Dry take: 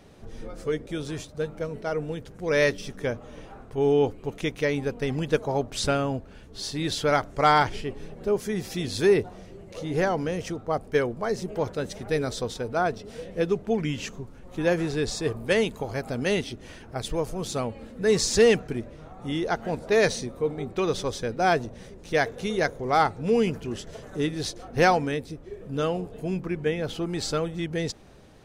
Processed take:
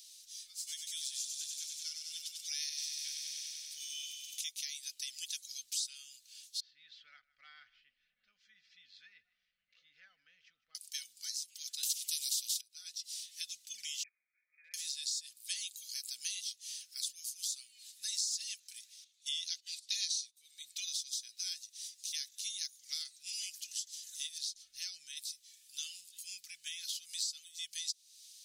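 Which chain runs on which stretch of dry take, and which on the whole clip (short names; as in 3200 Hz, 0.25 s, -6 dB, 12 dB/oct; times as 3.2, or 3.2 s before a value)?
0.57–4.44 low shelf 260 Hz +4 dB + thin delay 96 ms, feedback 77%, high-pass 1600 Hz, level -5 dB
6.6–10.75 LPF 1500 Hz 24 dB/oct + echo 0.155 s -22 dB + three-band squash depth 40%
11.83–12.61 resonant high shelf 1900 Hz +12.5 dB, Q 3 + spectral compressor 2:1
14.03–14.74 dynamic EQ 1200 Hz, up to -3 dB, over -37 dBFS, Q 0.88 + brick-wall FIR band-pass 420–2500 Hz + compressor 2.5:1, threshold -32 dBFS
19.04–20.37 weighting filter D + gate -37 dBFS, range -18 dB
24.38–25.17 compressor 1.5:1, threshold -34 dBFS + tilt -2.5 dB/oct
whole clip: inverse Chebyshev high-pass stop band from 1000 Hz, stop band 70 dB; comb 4 ms, depth 37%; compressor 4:1, threshold -51 dBFS; gain +13 dB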